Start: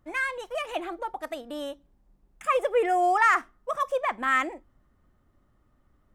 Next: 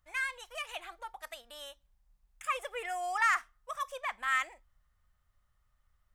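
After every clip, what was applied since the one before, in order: amplifier tone stack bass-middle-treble 10-0-10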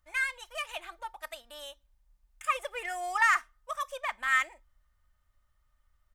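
comb 3.3 ms, depth 40%; in parallel at -8 dB: crossover distortion -43.5 dBFS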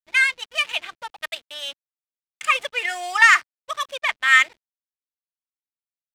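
hysteresis with a dead band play -43 dBFS; frequency weighting D; trim +5.5 dB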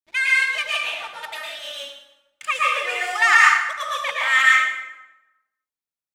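plate-style reverb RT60 1 s, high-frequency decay 0.7×, pre-delay 100 ms, DRR -5.5 dB; trim -5 dB

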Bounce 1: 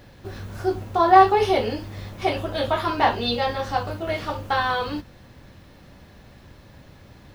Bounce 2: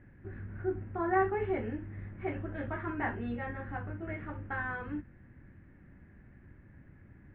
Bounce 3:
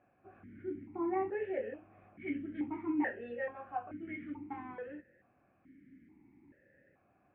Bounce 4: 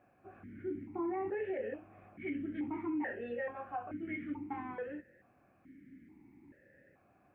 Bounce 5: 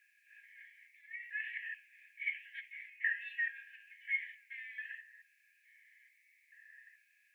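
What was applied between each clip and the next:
steep low-pass 2 kHz 36 dB/octave; high-order bell 750 Hz -11 dB; trim -7 dB
stepped vowel filter 2.3 Hz; trim +8 dB
peak limiter -33 dBFS, peak gain reduction 10 dB; trim +3 dB
flange 1.2 Hz, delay 8.9 ms, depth 4.7 ms, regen -90%; brick-wall FIR high-pass 1.6 kHz; trim +14.5 dB

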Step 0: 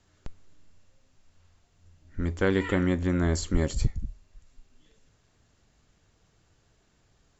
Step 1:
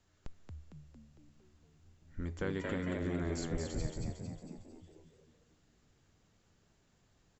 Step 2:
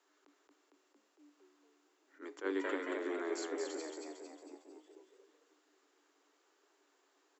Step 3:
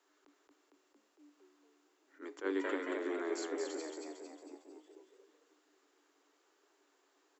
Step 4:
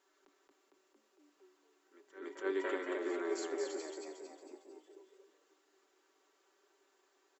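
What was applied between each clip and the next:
compression 2.5:1, threshold -29 dBFS, peak gain reduction 9 dB; on a send: frequency-shifting echo 227 ms, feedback 50%, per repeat +73 Hz, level -4 dB; on the sum: trim -7 dB
rippled Chebyshev high-pass 280 Hz, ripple 6 dB; attacks held to a fixed rise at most 290 dB/s; trim +5 dB
bass shelf 150 Hz +6.5 dB
comb 5.2 ms, depth 51%; pre-echo 286 ms -15.5 dB; trim -1.5 dB

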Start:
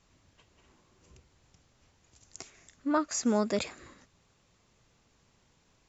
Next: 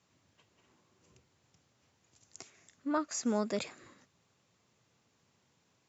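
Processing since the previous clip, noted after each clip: high-pass 95 Hz 24 dB/octave; trim -4.5 dB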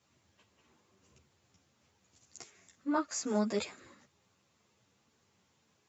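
three-phase chorus; trim +3.5 dB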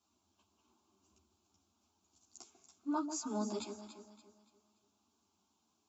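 static phaser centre 510 Hz, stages 6; echo whose repeats swap between lows and highs 143 ms, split 820 Hz, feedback 60%, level -6.5 dB; trim -3.5 dB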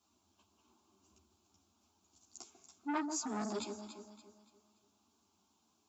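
transformer saturation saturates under 1.1 kHz; trim +3 dB

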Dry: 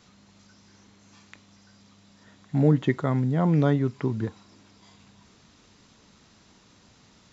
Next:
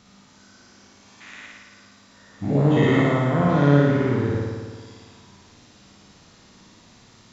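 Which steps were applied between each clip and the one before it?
every event in the spectrogram widened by 240 ms; flutter echo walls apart 9.6 m, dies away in 1.5 s; trim -3.5 dB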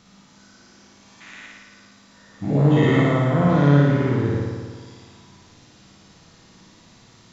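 simulated room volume 2800 m³, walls furnished, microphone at 0.69 m

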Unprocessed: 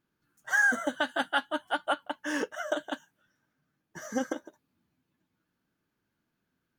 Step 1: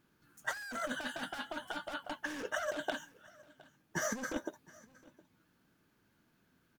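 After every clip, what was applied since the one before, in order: hard clipper -33 dBFS, distortion -4 dB; compressor with a negative ratio -40 dBFS, ratio -0.5; delay 714 ms -23 dB; trim +3.5 dB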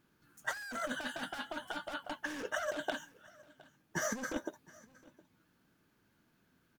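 no audible change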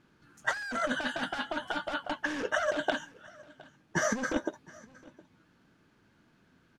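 distance through air 67 m; trim +7.5 dB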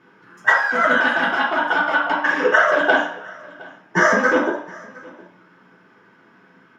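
reverberation RT60 0.60 s, pre-delay 3 ms, DRR -6 dB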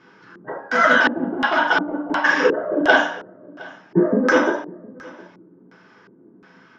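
LFO low-pass square 1.4 Hz 350–5500 Hz; trim +1.5 dB

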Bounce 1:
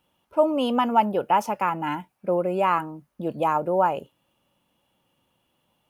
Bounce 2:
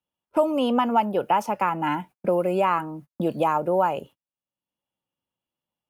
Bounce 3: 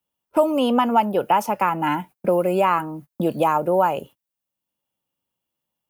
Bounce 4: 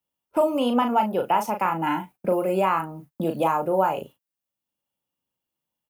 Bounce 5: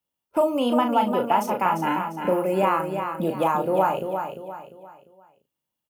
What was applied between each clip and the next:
gate -45 dBFS, range -41 dB; three bands compressed up and down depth 70%
treble shelf 11 kHz +11.5 dB; trim +3 dB
doubling 37 ms -6.5 dB; trim -4 dB
feedback delay 348 ms, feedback 37%, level -7 dB

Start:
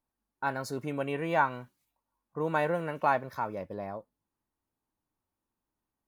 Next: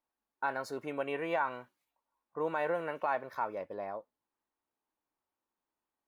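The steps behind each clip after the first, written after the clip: tone controls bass -15 dB, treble -8 dB; peak limiter -22 dBFS, peak gain reduction 8.5 dB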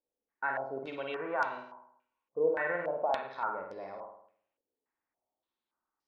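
flutter echo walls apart 8.9 m, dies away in 0.67 s; step-sequenced low-pass 3.5 Hz 490–5200 Hz; trim -5 dB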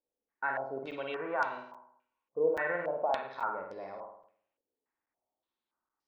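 crackling interface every 0.83 s, samples 256, zero, from 0.91 s

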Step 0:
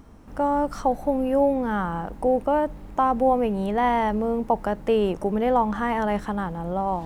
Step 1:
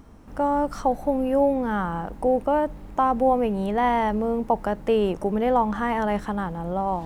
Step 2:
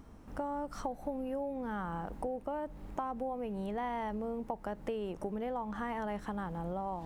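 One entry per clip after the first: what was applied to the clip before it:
no audible change
compression 6:1, threshold -29 dBFS, peak gain reduction 13.5 dB; trim -5.5 dB

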